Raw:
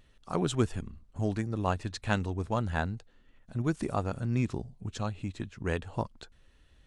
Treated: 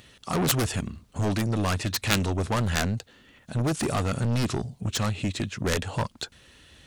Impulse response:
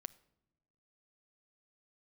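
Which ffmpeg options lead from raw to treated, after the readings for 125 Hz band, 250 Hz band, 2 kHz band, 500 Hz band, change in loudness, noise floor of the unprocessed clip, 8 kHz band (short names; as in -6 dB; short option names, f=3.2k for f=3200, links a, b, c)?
+5.5 dB, +4.5 dB, +7.0 dB, +3.5 dB, +5.5 dB, -63 dBFS, +15.0 dB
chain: -filter_complex "[0:a]highpass=89,acrossover=split=2200[a][b];[a]asoftclip=type=hard:threshold=-30.5dB[c];[b]acontrast=52[d];[c][d]amix=inputs=2:normalize=0,aeval=exprs='0.188*(cos(1*acos(clip(val(0)/0.188,-1,1)))-cos(1*PI/2))+0.0668*(cos(7*acos(clip(val(0)/0.188,-1,1)))-cos(7*PI/2))':c=same,volume=8.5dB"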